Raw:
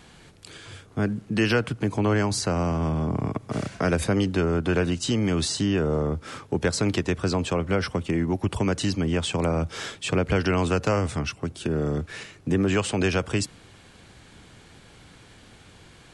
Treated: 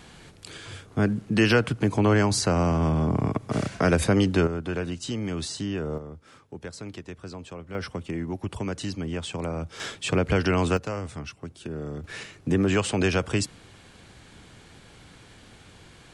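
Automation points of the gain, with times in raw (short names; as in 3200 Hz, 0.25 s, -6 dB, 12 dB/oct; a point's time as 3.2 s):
+2 dB
from 4.47 s -6.5 dB
from 5.98 s -14.5 dB
from 7.75 s -6.5 dB
from 9.8 s 0 dB
from 10.77 s -8.5 dB
from 12.04 s 0 dB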